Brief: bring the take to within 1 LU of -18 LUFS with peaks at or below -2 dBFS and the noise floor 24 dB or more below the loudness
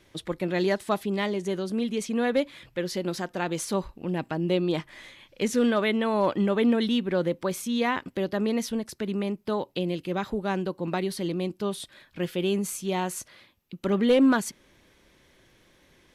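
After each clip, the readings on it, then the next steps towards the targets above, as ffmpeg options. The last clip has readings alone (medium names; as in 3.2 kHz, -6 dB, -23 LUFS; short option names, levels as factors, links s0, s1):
loudness -27.5 LUFS; peak level -13.5 dBFS; loudness target -18.0 LUFS
-> -af "volume=2.99"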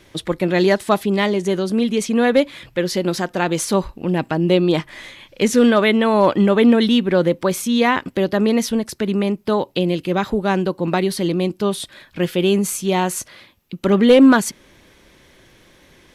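loudness -18.0 LUFS; peak level -4.0 dBFS; noise floor -52 dBFS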